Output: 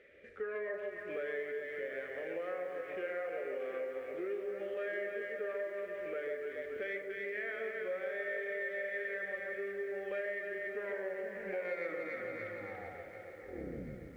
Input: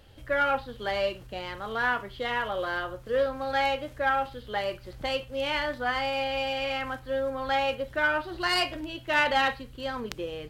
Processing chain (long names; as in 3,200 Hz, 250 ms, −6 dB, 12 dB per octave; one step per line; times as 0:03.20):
turntable brake at the end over 2.72 s
wrong playback speed 45 rpm record played at 33 rpm
pair of resonant band-passes 970 Hz, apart 1.8 octaves
delay that swaps between a low-pass and a high-pass 142 ms, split 1,100 Hz, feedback 65%, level −2.5 dB
downward compressor 4 to 1, threshold −47 dBFS, peak gain reduction 16.5 dB
feedback echo at a low word length 739 ms, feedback 55%, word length 12 bits, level −11.5 dB
level +8.5 dB